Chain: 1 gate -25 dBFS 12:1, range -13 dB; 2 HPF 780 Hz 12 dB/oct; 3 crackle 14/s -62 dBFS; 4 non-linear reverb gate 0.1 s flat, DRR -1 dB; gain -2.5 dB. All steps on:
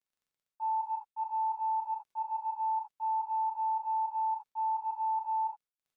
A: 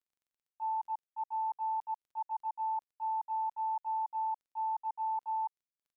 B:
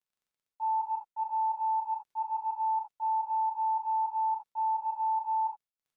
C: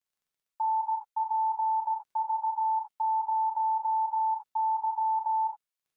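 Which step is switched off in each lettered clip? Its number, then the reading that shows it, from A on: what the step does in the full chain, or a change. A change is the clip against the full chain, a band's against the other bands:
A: 4, loudness change -3.0 LU; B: 2, loudness change +2.0 LU; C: 1, momentary loudness spread change -1 LU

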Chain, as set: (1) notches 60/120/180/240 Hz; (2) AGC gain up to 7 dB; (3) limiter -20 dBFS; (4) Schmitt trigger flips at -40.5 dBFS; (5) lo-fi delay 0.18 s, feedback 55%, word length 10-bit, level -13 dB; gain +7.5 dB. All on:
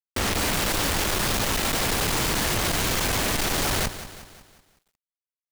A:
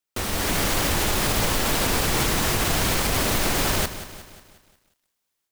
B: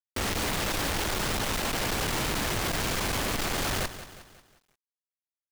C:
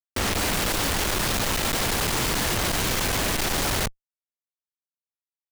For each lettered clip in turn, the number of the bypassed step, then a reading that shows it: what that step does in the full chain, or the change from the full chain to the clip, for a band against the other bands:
4, distortion 0 dB; 2, loudness change -5.0 LU; 5, crest factor change -1.5 dB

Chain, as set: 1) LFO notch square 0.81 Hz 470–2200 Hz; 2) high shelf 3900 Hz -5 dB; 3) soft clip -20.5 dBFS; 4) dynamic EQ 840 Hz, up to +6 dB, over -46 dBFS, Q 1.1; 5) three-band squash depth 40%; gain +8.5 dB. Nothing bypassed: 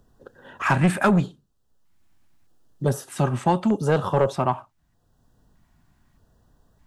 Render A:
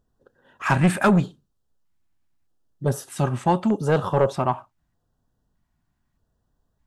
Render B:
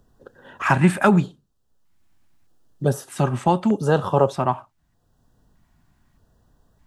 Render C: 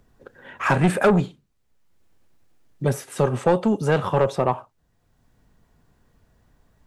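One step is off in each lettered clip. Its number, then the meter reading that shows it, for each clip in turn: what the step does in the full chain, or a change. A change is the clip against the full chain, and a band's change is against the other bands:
5, crest factor change -2.5 dB; 3, distortion -14 dB; 1, 500 Hz band +3.0 dB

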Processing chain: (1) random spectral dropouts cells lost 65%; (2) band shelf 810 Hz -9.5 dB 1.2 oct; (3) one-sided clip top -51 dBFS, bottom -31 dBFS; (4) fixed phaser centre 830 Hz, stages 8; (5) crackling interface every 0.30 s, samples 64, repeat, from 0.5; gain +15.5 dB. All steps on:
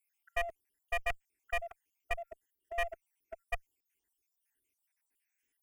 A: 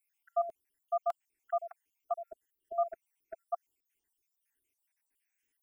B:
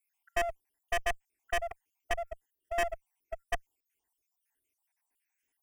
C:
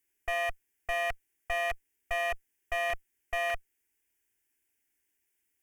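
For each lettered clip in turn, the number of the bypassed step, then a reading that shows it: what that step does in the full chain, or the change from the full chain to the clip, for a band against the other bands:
3, distortion -5 dB; 2, 8 kHz band +5.0 dB; 1, crest factor change -5.0 dB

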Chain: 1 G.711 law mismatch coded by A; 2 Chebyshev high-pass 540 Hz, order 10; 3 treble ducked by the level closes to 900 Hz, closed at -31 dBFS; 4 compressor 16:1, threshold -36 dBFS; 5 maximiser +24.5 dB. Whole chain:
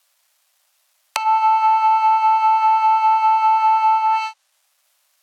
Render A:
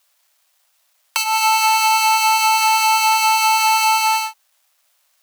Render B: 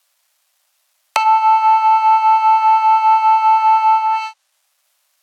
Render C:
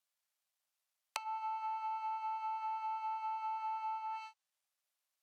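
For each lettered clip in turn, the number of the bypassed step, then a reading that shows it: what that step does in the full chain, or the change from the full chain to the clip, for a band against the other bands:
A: 3, loudness change +1.0 LU; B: 4, mean gain reduction 3.0 dB; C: 5, crest factor change +7.5 dB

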